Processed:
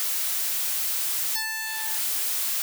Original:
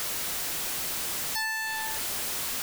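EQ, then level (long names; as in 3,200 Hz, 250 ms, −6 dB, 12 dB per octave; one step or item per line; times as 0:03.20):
high-pass filter 110 Hz 6 dB per octave
spectral tilt +3.5 dB per octave
high-shelf EQ 4,700 Hz −4.5 dB
−3.0 dB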